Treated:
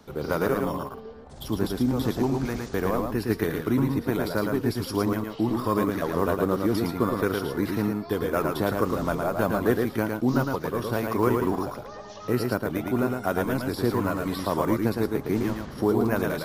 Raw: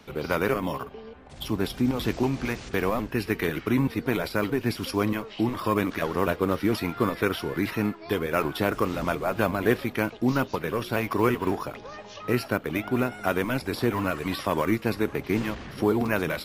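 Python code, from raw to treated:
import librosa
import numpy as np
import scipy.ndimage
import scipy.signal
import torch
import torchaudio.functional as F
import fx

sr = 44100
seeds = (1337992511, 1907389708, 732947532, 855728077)

y = fx.peak_eq(x, sr, hz=2500.0, db=-11.0, octaves=0.9)
y = y + 10.0 ** (-4.0 / 20.0) * np.pad(y, (int(111 * sr / 1000.0), 0))[:len(y)]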